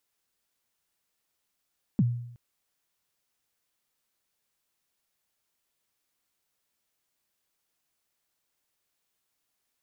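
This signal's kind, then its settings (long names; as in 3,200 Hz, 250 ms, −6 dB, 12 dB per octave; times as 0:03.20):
synth kick length 0.37 s, from 250 Hz, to 120 Hz, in 38 ms, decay 0.74 s, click off, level −17 dB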